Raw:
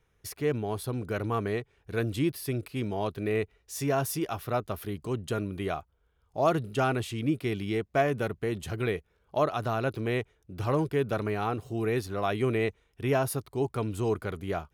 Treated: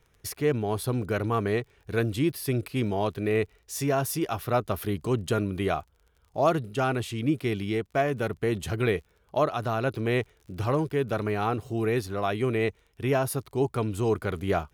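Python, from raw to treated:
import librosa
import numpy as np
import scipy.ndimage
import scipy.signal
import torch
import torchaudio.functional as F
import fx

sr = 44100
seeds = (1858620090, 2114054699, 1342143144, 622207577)

y = fx.rider(x, sr, range_db=4, speed_s=0.5)
y = fx.dmg_crackle(y, sr, seeds[0], per_s=32.0, level_db=-49.0)
y = F.gain(torch.from_numpy(y), 2.5).numpy()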